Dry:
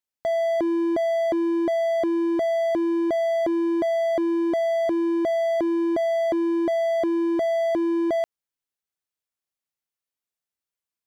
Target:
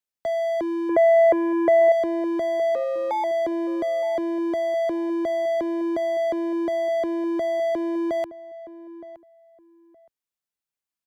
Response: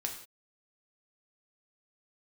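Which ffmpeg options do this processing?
-filter_complex "[0:a]asettb=1/sr,asplit=3[s0][s1][s2];[s0]atrim=end=0.894[s3];[s1]atrim=start=0.89:end=1.92,asetpts=PTS-STARTPTS,afade=t=in:d=0.004:c=qsin,afade=t=out:st=1.026:d=0.004:c=qsin,equalizer=f=125:t=o:w=1:g=9,equalizer=f=250:t=o:w=1:g=-3,equalizer=f=500:t=o:w=1:g=12,equalizer=f=1000:t=o:w=1:g=3,equalizer=f=2000:t=o:w=1:g=10,equalizer=f=4000:t=o:w=1:g=-11[s4];[s2]atrim=start=1.916[s5];[s3][s4]acrossfade=d=0.004:c1=hsin:c2=qsin[s6];[s6][s5]acrossfade=d=0.004:c1=qsin:c2=hsin,acrossover=split=100|350|1800[s7][s8][s9][s10];[s8]alimiter=level_in=1.68:limit=0.0631:level=0:latency=1,volume=0.596[s11];[s7][s11][s9][s10]amix=inputs=4:normalize=0,asettb=1/sr,asplit=3[s12][s13][s14];[s12]atrim=end=2.754[s15];[s13]atrim=start=2.75:end=3.24,asetpts=PTS-STARTPTS,afade=t=in:d=0.004:c=qsin,afade=t=out:st=0.486:d=0.004:c=qsin,afreqshift=200[s16];[s14]atrim=start=3.236[s17];[s15][s16]acrossfade=d=0.004:c1=hsin:c2=qsin[s18];[s18][s17]acrossfade=d=0.004:c1=qsin:c2=hsin,asplit=2[s19][s20];[s20]adelay=918,lowpass=f=1500:p=1,volume=0.168,asplit=2[s21][s22];[s22]adelay=918,lowpass=f=1500:p=1,volume=0.22[s23];[s19][s21][s23]amix=inputs=3:normalize=0,volume=0.841"

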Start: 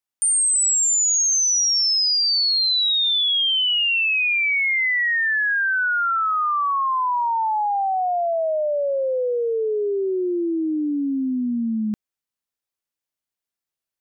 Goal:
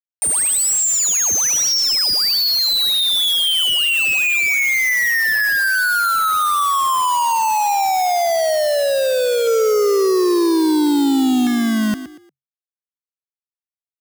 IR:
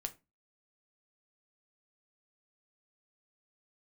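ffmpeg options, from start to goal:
-filter_complex "[0:a]highshelf=f=5900:g=-7.5,asplit=2[s0][s1];[s1]alimiter=limit=0.0668:level=0:latency=1,volume=1.12[s2];[s0][s2]amix=inputs=2:normalize=0,asettb=1/sr,asplit=3[s3][s4][s5];[s3]atrim=end=9.474[s6];[s4]atrim=start=9.47:end=11.47,asetpts=PTS-STARTPTS,afade=t=in:d=0.004:c=qsin,afade=t=out:st=1.996:d=0.004:c=qsin,acontrast=36[s7];[s5]atrim=start=11.466[s8];[s6][s7]acrossfade=d=0.004:c1=hsin:c2=qsin[s9];[s9][s8]acrossfade=d=0.004:c1=qsin:c2=hsin,acrusher=bits=3:mix=0:aa=0.000001,asoftclip=type=tanh:threshold=0.141,asplit=2[s10][s11];[s11]asplit=3[s12][s13][s14];[s12]adelay=117,afreqshift=45,volume=0.237[s15];[s13]adelay=234,afreqshift=90,volume=0.0759[s16];[s14]adelay=351,afreqshift=135,volume=0.0243[s17];[s15][s16][s17]amix=inputs=3:normalize=0[s18];[s10][s18]amix=inputs=2:normalize=0,volume=1.5"

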